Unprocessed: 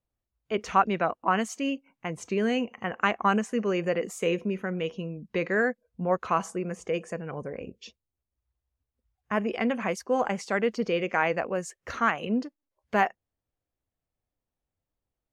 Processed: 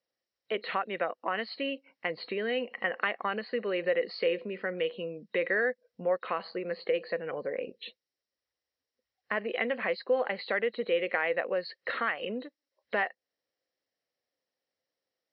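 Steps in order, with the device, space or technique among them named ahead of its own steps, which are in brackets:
hearing aid with frequency lowering (hearing-aid frequency compression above 3,700 Hz 4 to 1; downward compressor 2.5 to 1, threshold −32 dBFS, peak gain reduction 11.5 dB; loudspeaker in its box 300–5,500 Hz, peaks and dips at 520 Hz +8 dB, 940 Hz −3 dB, 1,900 Hz +10 dB, 3,100 Hz +6 dB, 4,700 Hz −4 dB)

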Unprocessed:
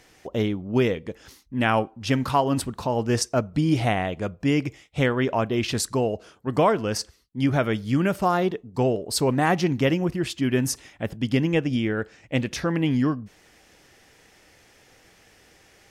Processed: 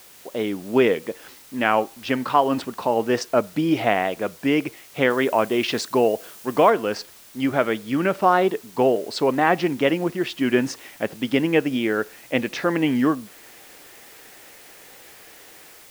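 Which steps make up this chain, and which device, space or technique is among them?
dictaphone (band-pass filter 290–3,300 Hz; automatic gain control gain up to 9.5 dB; tape wow and flutter; white noise bed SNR 25 dB)
0:05.10–0:06.70: high-shelf EQ 5,200 Hz +5 dB
level −2 dB

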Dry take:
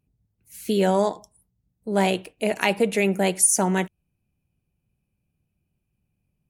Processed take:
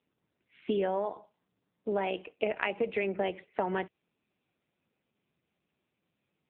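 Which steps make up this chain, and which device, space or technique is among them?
voicemail (band-pass filter 310–3,200 Hz; downward compressor 12 to 1, threshold −27 dBFS, peak gain reduction 11 dB; level +1.5 dB; AMR narrowband 6.7 kbit/s 8,000 Hz)

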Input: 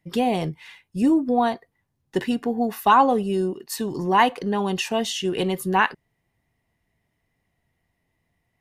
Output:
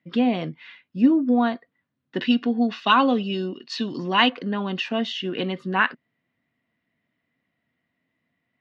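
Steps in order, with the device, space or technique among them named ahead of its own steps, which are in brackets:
0:02.21–0:04.30: flat-topped bell 4,200 Hz +10 dB
kitchen radio (loudspeaker in its box 190–4,000 Hz, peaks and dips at 250 Hz +7 dB, 400 Hz −7 dB, 840 Hz −10 dB, 1,400 Hz +4 dB)

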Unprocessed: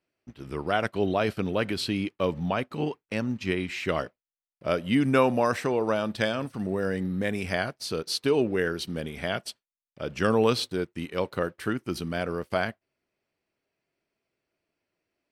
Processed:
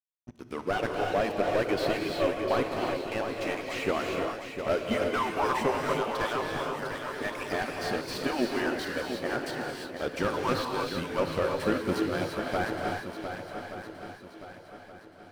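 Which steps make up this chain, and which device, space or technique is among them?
harmonic-percussive split with one part muted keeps percussive
0:09.01–0:09.41: Butterworth low-pass 1,800 Hz 36 dB per octave
early transistor amplifier (dead-zone distortion −49 dBFS; slew-rate limiting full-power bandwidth 45 Hz)
feedback echo with a long and a short gap by turns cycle 1,174 ms, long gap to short 1.5 to 1, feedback 37%, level −8 dB
reverb whose tail is shaped and stops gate 370 ms rising, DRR 1 dB
level +2 dB

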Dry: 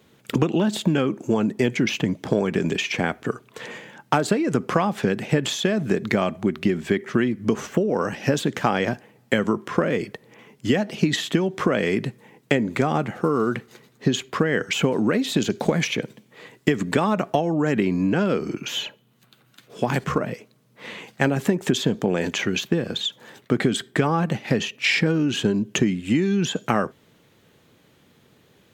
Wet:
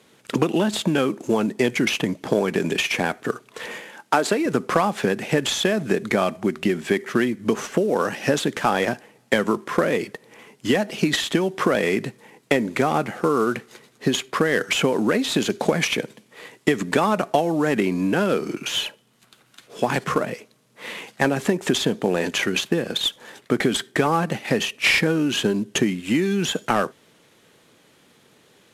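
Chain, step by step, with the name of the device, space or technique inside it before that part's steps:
early wireless headset (high-pass filter 300 Hz 6 dB per octave; variable-slope delta modulation 64 kbit/s)
0:03.82–0:04.46: high-pass filter 220 Hz 12 dB per octave
level +3.5 dB

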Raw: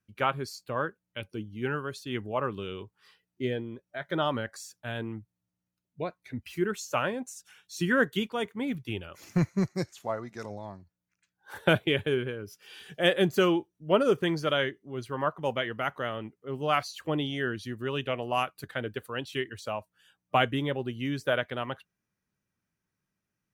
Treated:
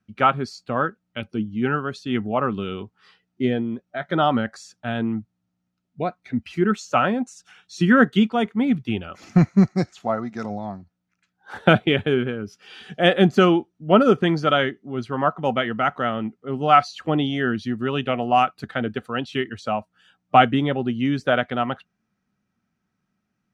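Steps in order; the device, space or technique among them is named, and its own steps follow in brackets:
inside a cardboard box (low-pass filter 5,500 Hz 12 dB per octave; hollow resonant body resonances 220/730/1,300 Hz, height 10 dB, ringing for 40 ms)
level +5.5 dB

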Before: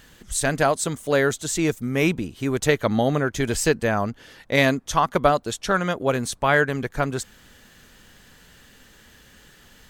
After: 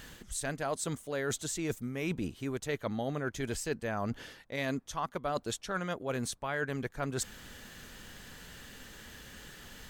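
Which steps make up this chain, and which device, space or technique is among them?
compression on the reversed sound (reversed playback; downward compressor 6 to 1, threshold −34 dBFS, peak gain reduction 20.5 dB; reversed playback)
level +1.5 dB

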